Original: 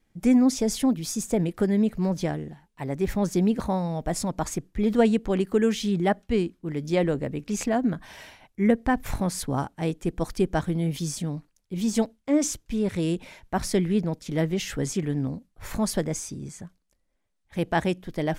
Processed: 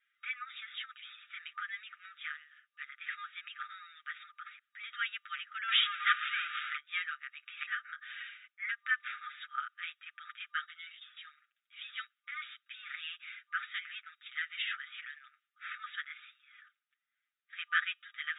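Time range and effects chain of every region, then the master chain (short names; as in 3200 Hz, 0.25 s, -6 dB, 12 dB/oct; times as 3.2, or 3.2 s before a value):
4.26–4.79 compressor 3:1, threshold -31 dBFS + high shelf 3700 Hz -6 dB
5.68–6.77 zero-crossing step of -33.5 dBFS + upward compressor, threshold -28 dBFS + sample leveller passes 2
10.52–11.17 expander -27 dBFS + notch 2400 Hz, Q 11 + three-band squash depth 40%
whole clip: FFT band-pass 1200–3800 Hz; tilt -3 dB/oct; comb 7.4 ms, depth 84%; gain +2.5 dB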